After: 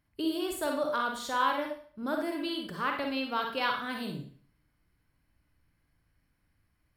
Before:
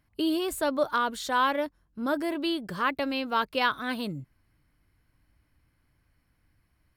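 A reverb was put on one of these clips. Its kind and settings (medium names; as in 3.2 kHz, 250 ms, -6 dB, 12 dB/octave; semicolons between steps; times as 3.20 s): Schroeder reverb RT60 0.47 s, DRR 2 dB; trim -5.5 dB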